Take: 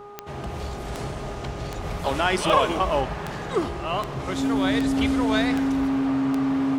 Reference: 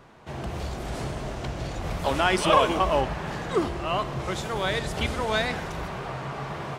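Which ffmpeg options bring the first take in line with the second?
ffmpeg -i in.wav -af "adeclick=threshold=4,bandreject=frequency=409.8:width_type=h:width=4,bandreject=frequency=819.6:width_type=h:width=4,bandreject=frequency=1229.4:width_type=h:width=4,bandreject=frequency=270:width=30" out.wav

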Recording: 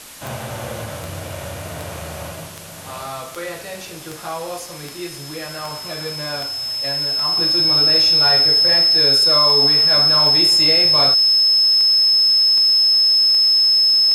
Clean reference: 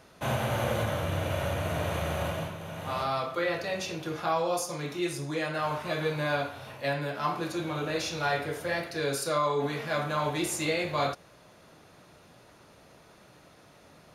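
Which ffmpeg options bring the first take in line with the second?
ffmpeg -i in.wav -af "adeclick=threshold=4,bandreject=frequency=5200:width=30,afwtdn=0.014,asetnsamples=nb_out_samples=441:pad=0,asendcmd='7.37 volume volume -6dB',volume=0dB" out.wav

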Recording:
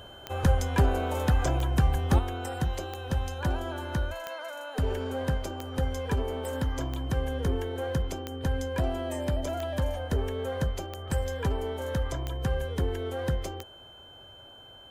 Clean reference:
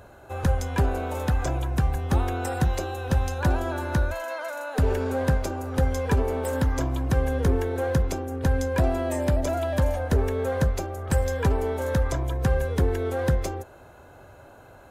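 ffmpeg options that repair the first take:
ffmpeg -i in.wav -af "adeclick=threshold=4,bandreject=frequency=3100:width=30,asetnsamples=nb_out_samples=441:pad=0,asendcmd='2.19 volume volume 6dB',volume=0dB" out.wav

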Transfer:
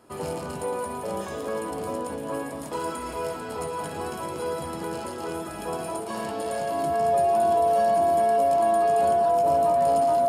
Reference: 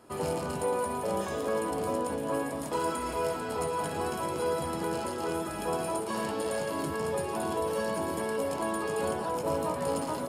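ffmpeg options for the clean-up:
ffmpeg -i in.wav -af "bandreject=frequency=690:width=30" out.wav

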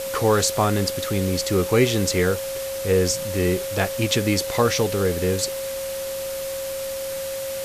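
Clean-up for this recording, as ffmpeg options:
ffmpeg -i in.wav -af "adeclick=threshold=4,bandreject=frequency=540:width=30,afwtdn=0.02" out.wav

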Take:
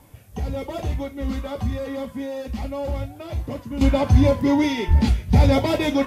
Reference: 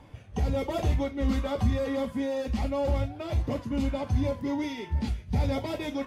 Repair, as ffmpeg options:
ffmpeg -i in.wav -filter_complex "[0:a]asplit=3[link_01][link_02][link_03];[link_01]afade=type=out:start_time=4.87:duration=0.02[link_04];[link_02]highpass=frequency=140:width=0.5412,highpass=frequency=140:width=1.3066,afade=type=in:start_time=4.87:duration=0.02,afade=type=out:start_time=4.99:duration=0.02[link_05];[link_03]afade=type=in:start_time=4.99:duration=0.02[link_06];[link_04][link_05][link_06]amix=inputs=3:normalize=0,agate=range=-21dB:threshold=-30dB,asetnsamples=nb_out_samples=441:pad=0,asendcmd='3.81 volume volume -11.5dB',volume=0dB" out.wav

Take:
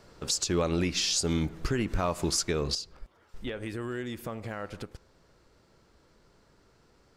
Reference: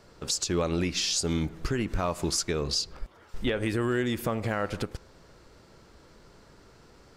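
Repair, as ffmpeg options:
ffmpeg -i in.wav -af "asetnsamples=nb_out_samples=441:pad=0,asendcmd='2.75 volume volume 8dB',volume=0dB" out.wav

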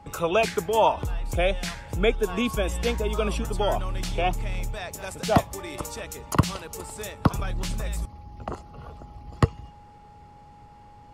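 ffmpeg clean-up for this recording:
ffmpeg -i in.wav -af "bandreject=frequency=830:width=30" out.wav

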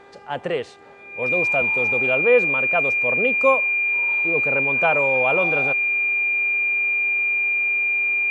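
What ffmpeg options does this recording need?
ffmpeg -i in.wav -af "bandreject=frequency=399.2:width_type=h:width=4,bandreject=frequency=798.4:width_type=h:width=4,bandreject=frequency=1197.6:width_type=h:width=4,bandreject=frequency=1596.8:width_type=h:width=4,bandreject=frequency=1996:width_type=h:width=4,bandreject=frequency=2395.2:width_type=h:width=4,bandreject=frequency=2400:width=30" out.wav

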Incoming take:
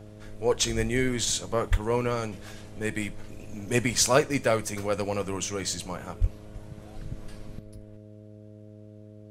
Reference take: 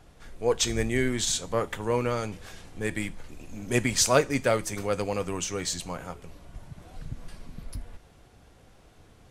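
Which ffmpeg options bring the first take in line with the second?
ffmpeg -i in.wav -filter_complex "[0:a]bandreject=frequency=105.6:width_type=h:width=4,bandreject=frequency=211.2:width_type=h:width=4,bandreject=frequency=316.8:width_type=h:width=4,bandreject=frequency=422.4:width_type=h:width=4,bandreject=frequency=528:width_type=h:width=4,bandreject=frequency=633.6:width_type=h:width=4,asplit=3[link_01][link_02][link_03];[link_01]afade=type=out:start_time=1.7:duration=0.02[link_04];[link_02]highpass=frequency=140:width=0.5412,highpass=frequency=140:width=1.3066,afade=type=in:start_time=1.7:duration=0.02,afade=type=out:start_time=1.82:duration=0.02[link_05];[link_03]afade=type=in:start_time=1.82:duration=0.02[link_06];[link_04][link_05][link_06]amix=inputs=3:normalize=0,asplit=3[link_07][link_08][link_09];[link_07]afade=type=out:start_time=6.2:duration=0.02[link_10];[link_08]highpass=frequency=140:width=0.5412,highpass=frequency=140:width=1.3066,afade=type=in:start_time=6.2:duration=0.02,afade=type=out:start_time=6.32:duration=0.02[link_11];[link_09]afade=type=in:start_time=6.32:duration=0.02[link_12];[link_10][link_11][link_12]amix=inputs=3:normalize=0,asetnsamples=nb_out_samples=441:pad=0,asendcmd='7.59 volume volume 12dB',volume=0dB" out.wav

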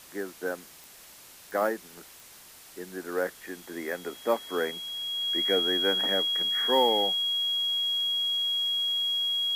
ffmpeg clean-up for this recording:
ffmpeg -i in.wav -af "adeclick=threshold=4,bandreject=frequency=3300:width=30,afwtdn=0.0035" out.wav

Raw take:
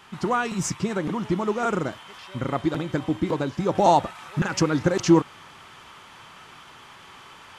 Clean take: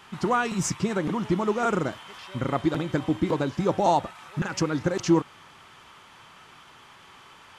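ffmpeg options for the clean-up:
ffmpeg -i in.wav -af "asetnsamples=nb_out_samples=441:pad=0,asendcmd='3.75 volume volume -4dB',volume=0dB" out.wav

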